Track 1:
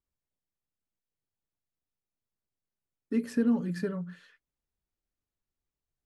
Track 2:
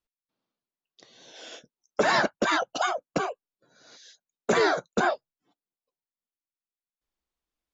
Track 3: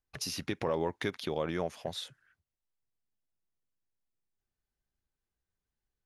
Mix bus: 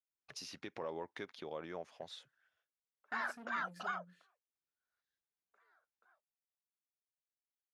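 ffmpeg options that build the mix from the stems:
ffmpeg -i stem1.wav -i stem2.wav -i stem3.wav -filter_complex "[0:a]agate=range=-16dB:threshold=-54dB:ratio=16:detection=peak,equalizer=frequency=930:width=0.43:gain=-10,asoftclip=type=tanh:threshold=-35.5dB,volume=-9dB,asplit=2[link_01][link_02];[1:a]acompressor=threshold=-37dB:ratio=2.5,bandpass=frequency=1400:width_type=q:width=2.1:csg=0,adelay=1050,volume=1dB[link_03];[2:a]lowpass=7300,adynamicequalizer=threshold=0.00355:dfrequency=2000:dqfactor=0.7:tfrequency=2000:tqfactor=0.7:attack=5:release=100:ratio=0.375:range=2.5:mode=cutabove:tftype=highshelf,adelay=150,volume=-8.5dB[link_04];[link_02]apad=whole_len=387368[link_05];[link_03][link_05]sidechaingate=range=-33dB:threshold=-60dB:ratio=16:detection=peak[link_06];[link_01][link_06][link_04]amix=inputs=3:normalize=0,highpass=frequency=400:poles=1" out.wav

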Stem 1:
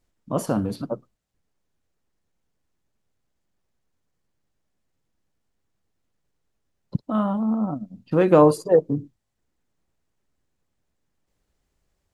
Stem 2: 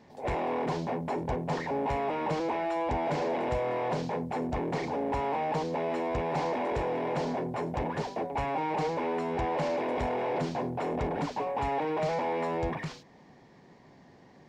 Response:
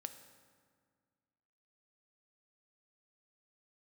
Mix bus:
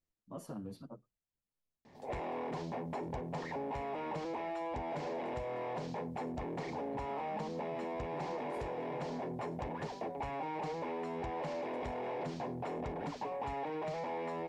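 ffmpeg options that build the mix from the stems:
-filter_complex "[0:a]acompressor=threshold=-22dB:ratio=6,asplit=2[link_01][link_02];[link_02]adelay=8.7,afreqshift=-2.5[link_03];[link_01][link_03]amix=inputs=2:normalize=1,volume=-14.5dB[link_04];[1:a]adelay=1850,volume=-3.5dB[link_05];[link_04][link_05]amix=inputs=2:normalize=0,bandreject=frequency=1500:width=25,acompressor=threshold=-37dB:ratio=4"

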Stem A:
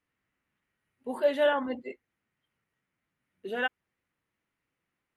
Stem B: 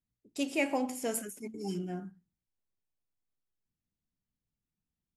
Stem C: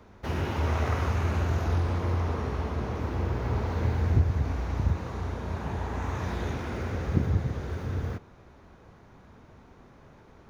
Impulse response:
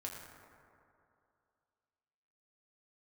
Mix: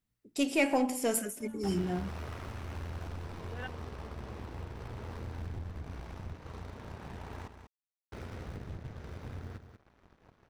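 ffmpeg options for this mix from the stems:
-filter_complex "[0:a]volume=-14dB[link_01];[1:a]aeval=exprs='0.141*(cos(1*acos(clip(val(0)/0.141,-1,1)))-cos(1*PI/2))+0.00891*(cos(5*acos(clip(val(0)/0.141,-1,1)))-cos(5*PI/2))+0.00112*(cos(8*acos(clip(val(0)/0.141,-1,1)))-cos(8*PI/2))':channel_layout=same,volume=2dB,asplit=3[link_02][link_03][link_04];[link_03]volume=-22dB[link_05];[2:a]acompressor=threshold=-39dB:ratio=2,aeval=exprs='0.0224*(cos(1*acos(clip(val(0)/0.0224,-1,1)))-cos(1*PI/2))+0.00501*(cos(2*acos(clip(val(0)/0.0224,-1,1)))-cos(2*PI/2))+0.002*(cos(3*acos(clip(val(0)/0.0224,-1,1)))-cos(3*PI/2))+0.00224*(cos(4*acos(clip(val(0)/0.0224,-1,1)))-cos(4*PI/2))+0.00224*(cos(7*acos(clip(val(0)/0.0224,-1,1)))-cos(7*PI/2))':channel_layout=same,acompressor=mode=upward:threshold=-45dB:ratio=2.5,adelay=1400,volume=-6dB,asplit=3[link_06][link_07][link_08];[link_06]atrim=end=7.48,asetpts=PTS-STARTPTS,afade=type=out:start_time=7.476:duration=0.004:curve=hsin[link_09];[link_07]atrim=start=7.48:end=8.12,asetpts=PTS-STARTPTS,volume=0[link_10];[link_08]atrim=start=8.12,asetpts=PTS-STARTPTS,afade=type=in:duration=0.004:curve=hsin[link_11];[link_09][link_10][link_11]concat=n=3:v=0:a=1,asplit=2[link_12][link_13];[link_13]volume=-9dB[link_14];[link_04]apad=whole_len=227902[link_15];[link_01][link_15]sidechaincompress=threshold=-49dB:ratio=8:attack=16:release=1160[link_16];[link_05][link_14]amix=inputs=2:normalize=0,aecho=0:1:191:1[link_17];[link_16][link_02][link_12][link_17]amix=inputs=4:normalize=0,bandreject=frequency=6700:width=17"

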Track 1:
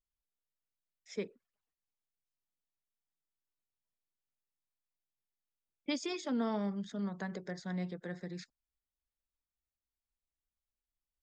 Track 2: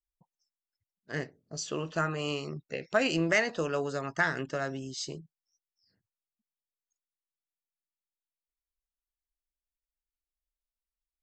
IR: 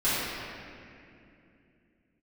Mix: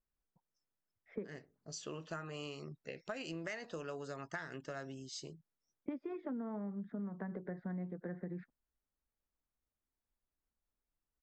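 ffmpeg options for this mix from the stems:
-filter_complex "[0:a]lowpass=frequency=1800:width=0.5412,lowpass=frequency=1800:width=1.3066,equalizer=frequency=250:width=0.61:gain=5.5,volume=2.5dB[link_01];[1:a]adelay=150,volume=-9dB[link_02];[link_01][link_02]amix=inputs=2:normalize=0,acompressor=threshold=-39dB:ratio=8"

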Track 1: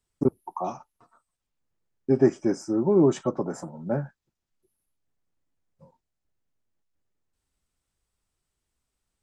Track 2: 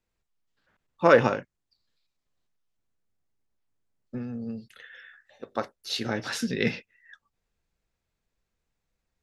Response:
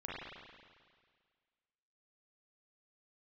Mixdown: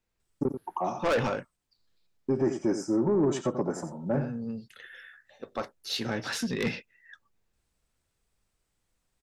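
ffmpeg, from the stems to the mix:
-filter_complex "[0:a]alimiter=limit=-16.5dB:level=0:latency=1:release=45,adelay=200,volume=0.5dB,asplit=2[link_01][link_02];[link_02]volume=-10.5dB[link_03];[1:a]asoftclip=type=tanh:threshold=-21dB,volume=0dB[link_04];[link_03]aecho=0:1:88:1[link_05];[link_01][link_04][link_05]amix=inputs=3:normalize=0,asoftclip=type=tanh:threshold=-16.5dB"

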